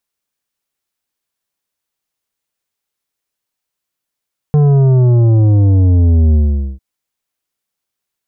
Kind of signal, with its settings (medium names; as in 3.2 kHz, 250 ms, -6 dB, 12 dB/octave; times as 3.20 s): sub drop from 150 Hz, over 2.25 s, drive 9.5 dB, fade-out 0.45 s, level -7.5 dB